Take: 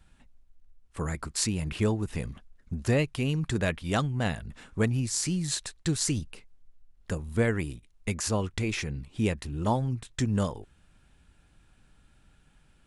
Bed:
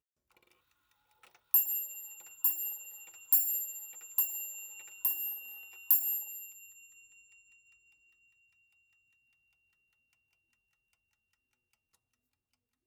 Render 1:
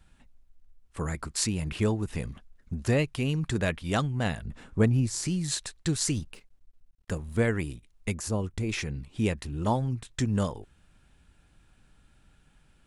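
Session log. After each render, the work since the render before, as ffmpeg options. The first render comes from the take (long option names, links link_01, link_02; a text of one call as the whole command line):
ffmpeg -i in.wav -filter_complex "[0:a]asettb=1/sr,asplit=3[link_01][link_02][link_03];[link_01]atrim=end=4.454[link_04];[link_02]atrim=start=4.45:end=5.28,asetpts=PTS-STARTPTS,afade=type=in:duration=0.004:curve=qsin,afade=type=out:start_time=0.826:duration=0.004:curve=qsin,tiltshelf=frequency=1100:gain=4[link_05];[link_03]atrim=start=5.276[link_06];[link_04][link_05]acrossfade=duration=0.004:curve1=hsin:curve2=qsin[link_07];[link_07][link_06]acrossfade=duration=0.004:curve1=qsin:curve2=hsin,asettb=1/sr,asplit=3[link_08][link_09][link_10];[link_08]atrim=end=6.114[link_11];[link_09]atrim=start=6.11:end=7.38,asetpts=PTS-STARTPTS,afade=type=in:duration=0.004:curve=qsin,afade=type=out:start_time=1.266:duration=0.004:curve=qsin,aeval=exprs='sgn(val(0))*max(abs(val(0))-0.00133,0)':channel_layout=same[link_12];[link_10]atrim=start=7.376[link_13];[link_11][link_12]acrossfade=duration=0.004:curve1=hsin:curve2=qsin[link_14];[link_14][link_13]acrossfade=duration=0.004:curve1=qsin:curve2=hsin,asplit=3[link_15][link_16][link_17];[link_15]afade=type=out:start_time=8.11:duration=0.02[link_18];[link_16]equalizer=frequency=2600:width=0.36:gain=-9,afade=type=in:start_time=8.11:duration=0.02,afade=type=out:start_time=8.68:duration=0.02[link_19];[link_17]afade=type=in:start_time=8.68:duration=0.02[link_20];[link_18][link_19][link_20]amix=inputs=3:normalize=0" out.wav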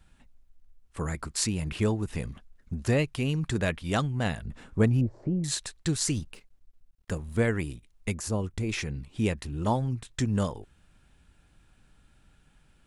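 ffmpeg -i in.wav -filter_complex "[0:a]asettb=1/sr,asplit=3[link_01][link_02][link_03];[link_01]atrim=end=5.014[link_04];[link_02]atrim=start=5.01:end=5.44,asetpts=PTS-STARTPTS,afade=type=in:duration=0.004:curve=qsin,afade=type=out:start_time=0.426:duration=0.004:curve=qsin,lowpass=frequency=600:width_type=q:width=2.9[link_05];[link_03]atrim=start=5.436[link_06];[link_04][link_05]acrossfade=duration=0.004:curve1=hsin:curve2=qsin[link_07];[link_07][link_06]acrossfade=duration=0.004:curve1=qsin:curve2=hsin" out.wav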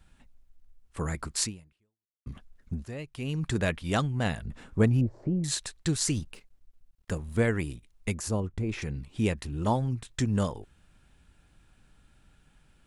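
ffmpeg -i in.wav -filter_complex "[0:a]asettb=1/sr,asplit=3[link_01][link_02][link_03];[link_01]atrim=end=8.404[link_04];[link_02]atrim=start=8.4:end=8.82,asetpts=PTS-STARTPTS,afade=type=in:duration=0.004:curve=qsin,afade=type=out:start_time=0.416:duration=0.004:curve=qsin,highshelf=frequency=2400:gain=-12[link_05];[link_03]atrim=start=8.816[link_06];[link_04][link_05]acrossfade=duration=0.004:curve1=hsin:curve2=qsin[link_07];[link_07][link_06]acrossfade=duration=0.004:curve1=qsin:curve2=hsin,asplit=3[link_08][link_09][link_10];[link_08]atrim=end=2.26,asetpts=PTS-STARTPTS,afade=type=out:start_time=1.43:duration=0.83:curve=exp[link_11];[link_09]atrim=start=2.26:end=2.85,asetpts=PTS-STARTPTS,afade=type=in:duration=0.004:curve=hsin,afade=type=out:start_time=0.586:duration=0.004:curve=hsin:silence=0.16788[link_12];[link_10]atrim=start=2.85,asetpts=PTS-STARTPTS,afade=type=in:duration=0.61:curve=qua:silence=0.16788[link_13];[link_11][link_12][link_13]concat=n=3:v=0:a=1" out.wav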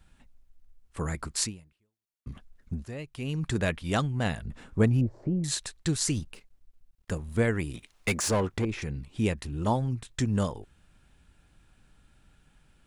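ffmpeg -i in.wav -filter_complex "[0:a]asettb=1/sr,asplit=3[link_01][link_02][link_03];[link_01]atrim=end=7.744[link_04];[link_02]atrim=start=7.74:end=8.65,asetpts=PTS-STARTPTS,afade=type=in:duration=0.004:curve=qsin,afade=type=out:start_time=0.906:duration=0.004:curve=qsin,asplit=2[link_05][link_06];[link_06]highpass=frequency=720:poles=1,volume=22dB,asoftclip=type=tanh:threshold=-16.5dB[link_07];[link_05][link_07]amix=inputs=2:normalize=0,lowpass=frequency=4900:poles=1,volume=-6dB[link_08];[link_03]atrim=start=8.646[link_09];[link_04][link_08]acrossfade=duration=0.004:curve1=hsin:curve2=qsin[link_10];[link_10][link_09]acrossfade=duration=0.004:curve1=qsin:curve2=hsin" out.wav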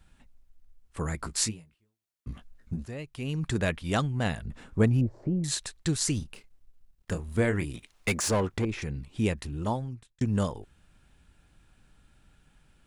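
ffmpeg -i in.wav -filter_complex "[0:a]asettb=1/sr,asplit=3[link_01][link_02][link_03];[link_01]atrim=end=1.204[link_04];[link_02]atrim=start=1.2:end=2.87,asetpts=PTS-STARTPTS,afade=type=in:duration=0.004:curve=qsin,afade=type=out:start_time=1.666:duration=0.004:curve=qsin,asplit=2[link_05][link_06];[link_06]adelay=18,volume=-4dB[link_07];[link_05][link_07]amix=inputs=2:normalize=0,atrim=end_sample=73647[link_08];[link_03]atrim=start=2.866[link_09];[link_04][link_08]acrossfade=duration=0.004:curve1=hsin:curve2=qsin[link_10];[link_10][link_09]acrossfade=duration=0.004:curve1=qsin:curve2=hsin,asettb=1/sr,asplit=3[link_11][link_12][link_13];[link_11]atrim=end=6.184[link_14];[link_12]atrim=start=6.18:end=7.65,asetpts=PTS-STARTPTS,afade=type=in:duration=0.004:curve=qsin,afade=type=out:start_time=1.466:duration=0.004:curve=qsin,asplit=2[link_15][link_16];[link_16]adelay=29,volume=-9dB[link_17];[link_15][link_17]amix=inputs=2:normalize=0,atrim=end_sample=64827[link_18];[link_13]atrim=start=7.646[link_19];[link_14][link_18]acrossfade=duration=0.004:curve1=hsin:curve2=qsin[link_20];[link_20][link_19]acrossfade=duration=0.004:curve1=qsin:curve2=hsin,asplit=2[link_21][link_22];[link_21]atrim=end=10.21,asetpts=PTS-STARTPTS,afade=type=out:start_time=9.47:duration=0.74[link_23];[link_22]atrim=start=10.21,asetpts=PTS-STARTPTS,afade=type=in:duration=0.004:curve=hsin[link_24];[link_23][link_24]concat=n=2:v=0:a=1" out.wav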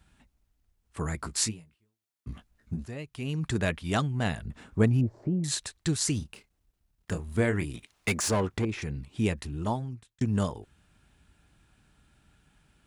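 ffmpeg -i in.wav -af "highpass=45,bandreject=frequency=520:width=12" out.wav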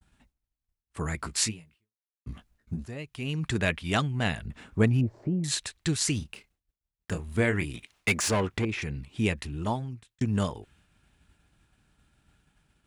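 ffmpeg -i in.wav -af "adynamicequalizer=threshold=0.00398:dfrequency=2500:dqfactor=1.1:tfrequency=2500:tqfactor=1.1:attack=5:release=100:ratio=0.375:range=3:mode=boostabove:tftype=bell,agate=range=-33dB:threshold=-59dB:ratio=3:detection=peak" out.wav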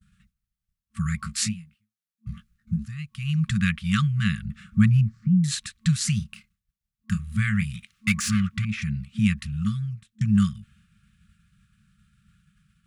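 ffmpeg -i in.wav -af "afftfilt=real='re*(1-between(b*sr/4096,220,1100))':imag='im*(1-between(b*sr/4096,220,1100))':win_size=4096:overlap=0.75,equalizer=frequency=240:width=0.59:gain=11" out.wav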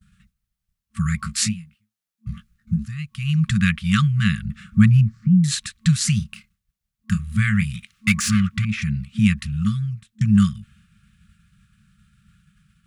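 ffmpeg -i in.wav -af "volume=4.5dB" out.wav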